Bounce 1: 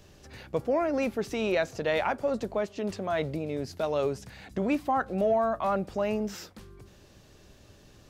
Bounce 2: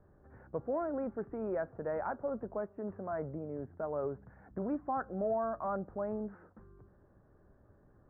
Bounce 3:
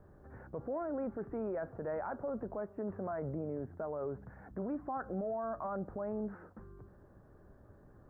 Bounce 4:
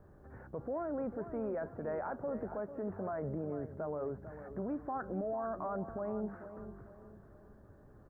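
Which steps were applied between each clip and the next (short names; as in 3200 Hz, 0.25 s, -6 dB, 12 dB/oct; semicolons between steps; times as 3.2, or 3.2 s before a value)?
steep low-pass 1600 Hz 48 dB/oct; gain -8 dB
limiter -35.5 dBFS, peak gain reduction 11 dB; gain +4.5 dB
feedback echo 0.447 s, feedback 39%, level -11.5 dB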